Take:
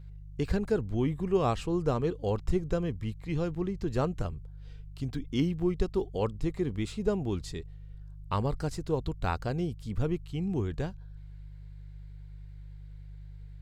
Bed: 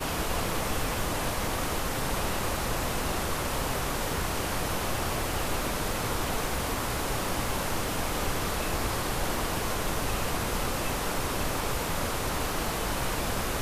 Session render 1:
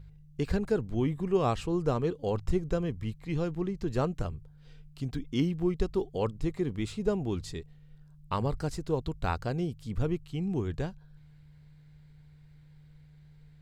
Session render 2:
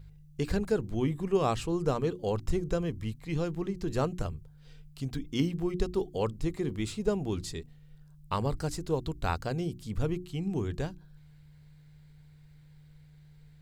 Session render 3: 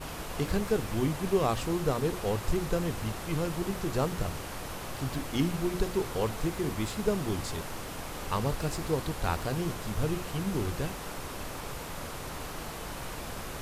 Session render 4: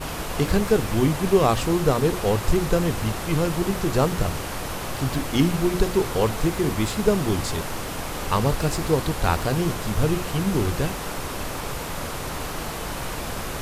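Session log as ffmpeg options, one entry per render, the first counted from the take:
-af "bandreject=f=50:t=h:w=4,bandreject=f=100:t=h:w=4"
-af "highshelf=f=5400:g=7.5,bandreject=f=60:t=h:w=6,bandreject=f=120:t=h:w=6,bandreject=f=180:t=h:w=6,bandreject=f=240:t=h:w=6,bandreject=f=300:t=h:w=6,bandreject=f=360:t=h:w=6"
-filter_complex "[1:a]volume=0.355[s0];[0:a][s0]amix=inputs=2:normalize=0"
-af "volume=2.66"

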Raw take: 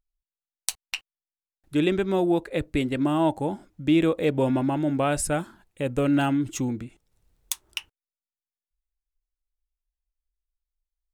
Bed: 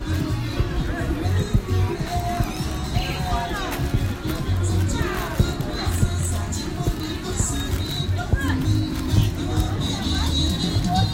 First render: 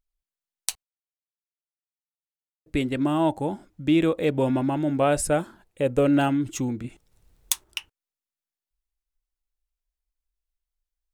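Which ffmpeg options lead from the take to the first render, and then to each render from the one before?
-filter_complex "[0:a]asettb=1/sr,asplit=3[s0][s1][s2];[s0]atrim=end=5.014[s3];[s1]atrim=start=5.01:end=6.28,asetpts=PTS-STARTPTS,afade=t=in:d=0.004:c=qsin,afade=t=out:st=1.266:d=0.004:c=qsin,equalizer=f=510:w=1.5:g=6[s4];[s2]atrim=start=6.276[s5];[s3][s4]acrossfade=d=0.004:c1=hsin:c2=qsin[s6];[s6][s5]acrossfade=d=0.004:c1=qsin:c2=hsin,asettb=1/sr,asplit=3[s7][s8][s9];[s7]atrim=end=6.844[s10];[s8]atrim=start=6.84:end=7.64,asetpts=PTS-STARTPTS,afade=t=in:d=0.004:c=qsin,afade=t=out:st=0.796:d=0.004:c=qsin,acontrast=52[s11];[s9]atrim=start=7.636[s12];[s10][s11]acrossfade=d=0.004:c1=hsin:c2=qsin[s13];[s13][s12]acrossfade=d=0.004:c1=qsin:c2=hsin,asplit=3[s14][s15][s16];[s14]atrim=end=0.83,asetpts=PTS-STARTPTS,afade=t=out:st=0.826:d=0.004:c=hsin[s17];[s15]atrim=start=0.83:end=2.66,asetpts=PTS-STARTPTS,volume=0[s18];[s16]atrim=start=2.66,asetpts=PTS-STARTPTS,afade=t=in:d=0.004:c=hsin[s19];[s17][s18][s19]concat=n=3:v=0:a=1"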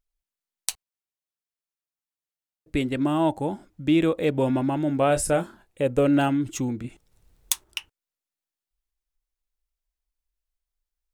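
-filter_complex "[0:a]asettb=1/sr,asplit=3[s0][s1][s2];[s0]atrim=end=5.074[s3];[s1]atrim=start=5.07:end=5.82,asetpts=PTS-STARTPTS,afade=t=in:d=0.004:c=qsin,afade=t=out:st=0.746:d=0.004:c=qsin,asplit=2[s4][s5];[s5]adelay=29,volume=0.335[s6];[s4][s6]amix=inputs=2:normalize=0,atrim=end_sample=33075[s7];[s2]atrim=start=5.816[s8];[s3][s7]acrossfade=d=0.004:c1=hsin:c2=qsin[s9];[s9][s8]acrossfade=d=0.004:c1=qsin:c2=hsin"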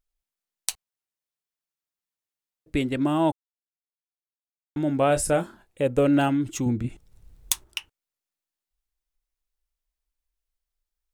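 -filter_complex "[0:a]asettb=1/sr,asplit=3[s0][s1][s2];[s0]atrim=end=6.664[s3];[s1]atrim=start=6.66:end=7.68,asetpts=PTS-STARTPTS,afade=t=in:d=0.004:c=qsin,afade=t=out:st=1.016:d=0.004:c=qsin,lowshelf=f=200:g=10[s4];[s2]atrim=start=7.676[s5];[s3][s4]acrossfade=d=0.004:c1=hsin:c2=qsin[s6];[s6][s5]acrossfade=d=0.004:c1=qsin:c2=hsin,asplit=3[s7][s8][s9];[s7]atrim=end=3.32,asetpts=PTS-STARTPTS,afade=t=out:st=3.316:d=0.004:c=hsin[s10];[s8]atrim=start=3.32:end=4.76,asetpts=PTS-STARTPTS,volume=0[s11];[s9]atrim=start=4.76,asetpts=PTS-STARTPTS,afade=t=in:d=0.004:c=hsin[s12];[s10][s11][s12]concat=n=3:v=0:a=1"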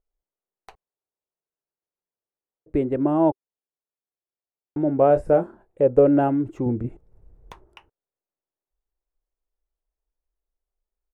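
-filter_complex "[0:a]acrossover=split=4300[s0][s1];[s1]acompressor=threshold=0.01:ratio=4:attack=1:release=60[s2];[s0][s2]amix=inputs=2:normalize=0,firequalizer=gain_entry='entry(260,0);entry(390,8);entry(1200,-3);entry(3300,-21)':delay=0.05:min_phase=1"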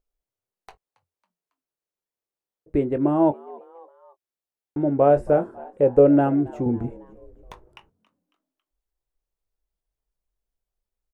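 -filter_complex "[0:a]asplit=2[s0][s1];[s1]adelay=21,volume=0.251[s2];[s0][s2]amix=inputs=2:normalize=0,asplit=4[s3][s4][s5][s6];[s4]adelay=275,afreqshift=86,volume=0.0794[s7];[s5]adelay=550,afreqshift=172,volume=0.0389[s8];[s6]adelay=825,afreqshift=258,volume=0.0191[s9];[s3][s7][s8][s9]amix=inputs=4:normalize=0"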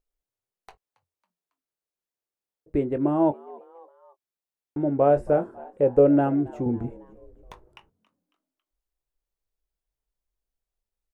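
-af "volume=0.75"

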